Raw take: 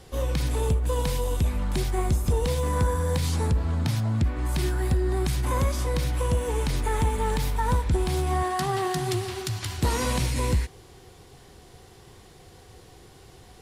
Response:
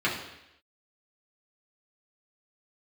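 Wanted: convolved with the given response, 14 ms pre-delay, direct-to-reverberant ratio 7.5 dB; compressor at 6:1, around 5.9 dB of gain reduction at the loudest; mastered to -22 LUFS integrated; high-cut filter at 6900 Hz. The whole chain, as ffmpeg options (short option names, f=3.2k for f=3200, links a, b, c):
-filter_complex "[0:a]lowpass=6.9k,acompressor=threshold=-25dB:ratio=6,asplit=2[a][b];[1:a]atrim=start_sample=2205,adelay=14[c];[b][c]afir=irnorm=-1:irlink=0,volume=-20dB[d];[a][d]amix=inputs=2:normalize=0,volume=8dB"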